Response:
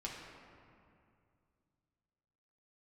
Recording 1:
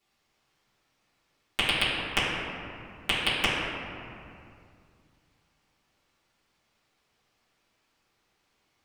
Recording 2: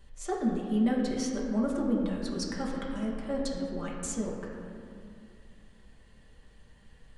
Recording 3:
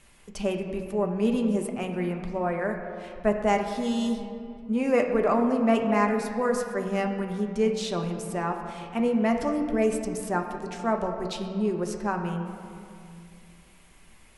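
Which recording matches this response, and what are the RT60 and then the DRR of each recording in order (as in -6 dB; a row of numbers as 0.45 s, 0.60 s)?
2; 2.4 s, 2.4 s, 2.4 s; -13.5 dB, -4.0 dB, 3.0 dB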